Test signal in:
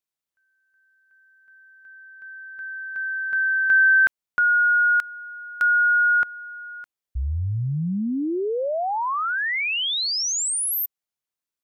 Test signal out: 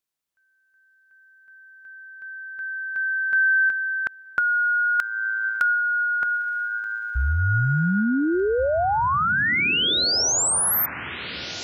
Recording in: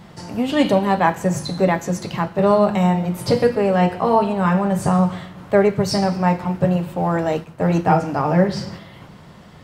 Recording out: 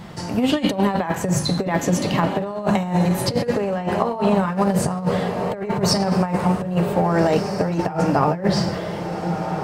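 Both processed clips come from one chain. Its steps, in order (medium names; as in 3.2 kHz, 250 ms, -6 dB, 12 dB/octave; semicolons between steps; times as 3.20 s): echo that smears into a reverb 1603 ms, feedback 41%, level -12.5 dB; compressor with a negative ratio -20 dBFS, ratio -0.5; trim +1.5 dB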